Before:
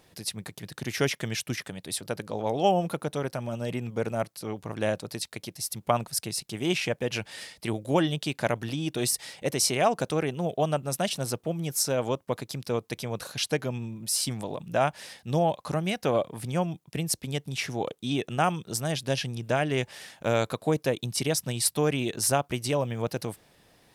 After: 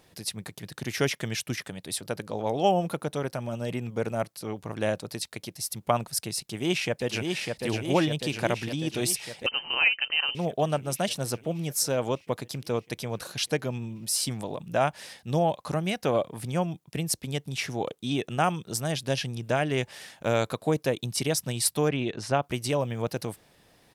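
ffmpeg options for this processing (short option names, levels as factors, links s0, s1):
-filter_complex "[0:a]asplit=2[s0][s1];[s1]afade=t=in:st=6.39:d=0.01,afade=t=out:st=7.25:d=0.01,aecho=0:1:600|1200|1800|2400|3000|3600|4200|4800|5400|6000|6600|7200:0.630957|0.44167|0.309169|0.216418|0.151493|0.106045|0.0742315|0.0519621|0.0363734|0.0254614|0.017823|0.0124761[s2];[s0][s2]amix=inputs=2:normalize=0,asettb=1/sr,asplit=3[s3][s4][s5];[s3]atrim=end=9.464[s6];[s4]atrim=start=9.46:end=10.35,asetpts=PTS-STARTPTS,afade=t=in:d=0.004:c=qsin,afade=t=out:st=0.886:d=0.004:c=qsin,lowpass=f=2700:t=q:w=0.5098,lowpass=f=2700:t=q:w=0.6013,lowpass=f=2700:t=q:w=0.9,lowpass=f=2700:t=q:w=2.563,afreqshift=-3200[s7];[s5]atrim=start=10.346[s8];[s6][s7]acrossfade=d=0.004:c1=hsin:c2=qsin[s9];[s9][s8]acrossfade=d=0.004:c1=qsin:c2=hsin,asplit=3[s10][s11][s12];[s10]afade=t=out:st=21.88:d=0.02[s13];[s11]lowpass=3500,afade=t=in:st=21.88:d=0.02,afade=t=out:st=22.41:d=0.02[s14];[s12]afade=t=in:st=22.41:d=0.02[s15];[s13][s14][s15]amix=inputs=3:normalize=0"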